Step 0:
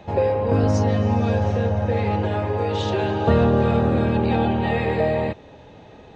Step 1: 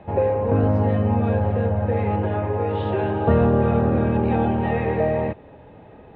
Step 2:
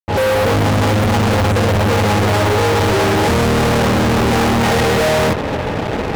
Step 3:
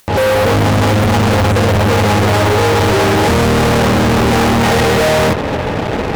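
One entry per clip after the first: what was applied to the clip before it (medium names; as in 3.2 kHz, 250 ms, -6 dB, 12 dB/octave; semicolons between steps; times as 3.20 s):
Bessel low-pass 1.9 kHz, order 6
fade-in on the opening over 0.79 s; fuzz box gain 46 dB, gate -48 dBFS
upward compressor, threshold -19 dBFS; trim +2.5 dB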